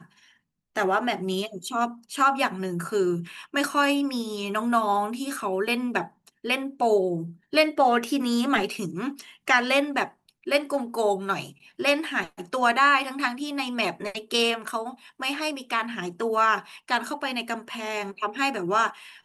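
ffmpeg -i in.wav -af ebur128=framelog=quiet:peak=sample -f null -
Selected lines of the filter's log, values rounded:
Integrated loudness:
  I:         -25.5 LUFS
  Threshold: -35.7 LUFS
Loudness range:
  LRA:         3.0 LU
  Threshold: -45.5 LUFS
  LRA low:   -27.1 LUFS
  LRA high:  -24.2 LUFS
Sample peak:
  Peak:       -7.9 dBFS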